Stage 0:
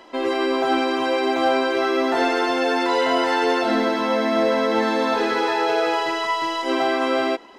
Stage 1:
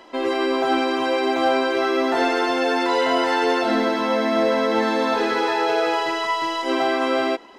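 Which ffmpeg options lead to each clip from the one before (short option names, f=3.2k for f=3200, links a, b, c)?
-af anull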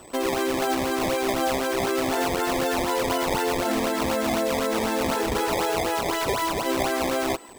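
-af "acompressor=threshold=-21dB:ratio=6,acrusher=samples=18:mix=1:aa=0.000001:lfo=1:lforange=28.8:lforate=4,aeval=exprs='val(0)+0.00282*sin(2*PI*8000*n/s)':c=same"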